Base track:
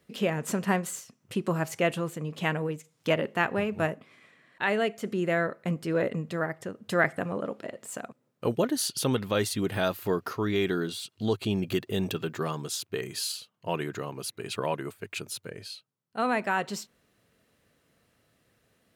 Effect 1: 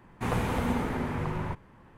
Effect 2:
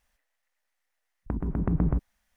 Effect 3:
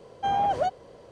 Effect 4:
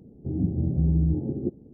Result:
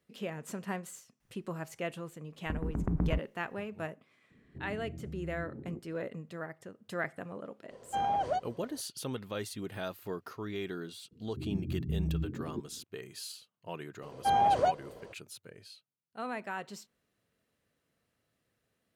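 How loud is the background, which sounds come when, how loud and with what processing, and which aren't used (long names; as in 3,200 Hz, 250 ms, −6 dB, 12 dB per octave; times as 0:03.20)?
base track −11 dB
0:01.20: mix in 2 −5.5 dB
0:04.30: mix in 4 −14.5 dB + downward compressor, threshold −25 dBFS
0:07.70: mix in 3 −6 dB
0:11.11: mix in 4 −10.5 dB + gate on every frequency bin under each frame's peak −20 dB strong
0:14.02: mix in 3 −1 dB
not used: 1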